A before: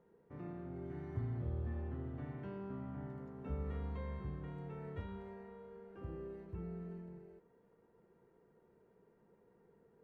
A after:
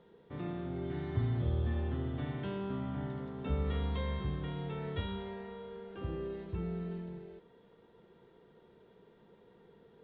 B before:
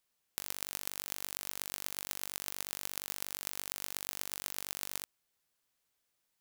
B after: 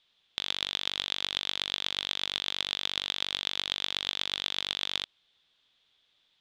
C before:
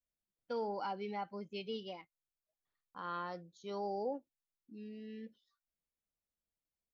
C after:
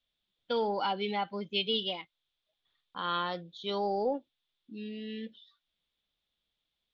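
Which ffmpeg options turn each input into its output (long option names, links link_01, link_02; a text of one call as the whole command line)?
ffmpeg -i in.wav -af "aeval=exprs='0.447*(cos(1*acos(clip(val(0)/0.447,-1,1)))-cos(1*PI/2))+0.178*(cos(2*acos(clip(val(0)/0.447,-1,1)))-cos(2*PI/2))+0.158*(cos(5*acos(clip(val(0)/0.447,-1,1)))-cos(5*PI/2))+0.0282*(cos(7*acos(clip(val(0)/0.447,-1,1)))-cos(7*PI/2))':channel_layout=same,lowpass=frequency=3500:width_type=q:width=7.5" out.wav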